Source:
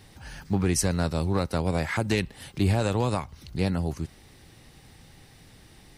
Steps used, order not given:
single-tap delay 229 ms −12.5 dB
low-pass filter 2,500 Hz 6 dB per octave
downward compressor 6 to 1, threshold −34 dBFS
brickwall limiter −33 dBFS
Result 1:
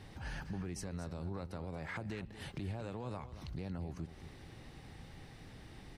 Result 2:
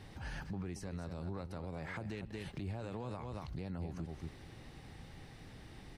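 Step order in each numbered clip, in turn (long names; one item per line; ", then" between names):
downward compressor, then low-pass filter, then brickwall limiter, then single-tap delay
single-tap delay, then downward compressor, then brickwall limiter, then low-pass filter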